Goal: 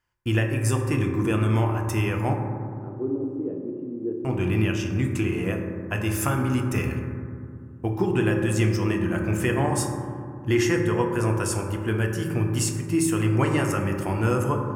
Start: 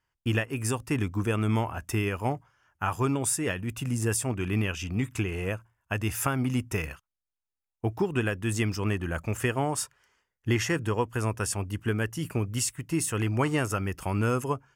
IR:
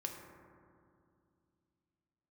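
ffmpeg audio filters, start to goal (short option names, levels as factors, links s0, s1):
-filter_complex "[0:a]asettb=1/sr,asplit=3[s0][s1][s2];[s0]atrim=end=2.344[s3];[s1]atrim=start=2.34:end=4.25,asetpts=PTS-STARTPTS,afade=t=in:d=0.004:c=qsin,afade=t=out:st=1.906:d=0.004:c=qsin,asuperpass=centerf=330:order=4:qfactor=1.5[s4];[s2]atrim=start=4.246[s5];[s3][s4]acrossfade=d=0.004:c1=hsin:c2=qsin[s6];[s6][s5]acrossfade=d=0.004:c1=qsin:c2=hsin[s7];[1:a]atrim=start_sample=2205[s8];[s7][s8]afir=irnorm=-1:irlink=0,volume=1.58"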